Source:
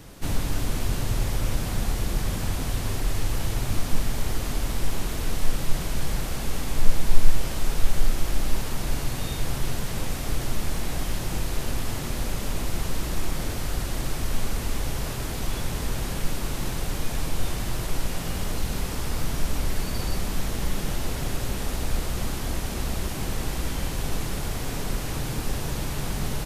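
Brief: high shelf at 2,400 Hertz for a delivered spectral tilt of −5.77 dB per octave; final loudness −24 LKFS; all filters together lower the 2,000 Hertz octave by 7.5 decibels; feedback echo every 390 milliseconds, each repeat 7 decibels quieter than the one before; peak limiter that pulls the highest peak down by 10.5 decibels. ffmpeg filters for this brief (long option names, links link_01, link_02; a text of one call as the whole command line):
ffmpeg -i in.wav -af "equalizer=frequency=2000:width_type=o:gain=-6,highshelf=frequency=2400:gain=-7.5,alimiter=limit=-12dB:level=0:latency=1,aecho=1:1:390|780|1170|1560|1950:0.447|0.201|0.0905|0.0407|0.0183,volume=7dB" out.wav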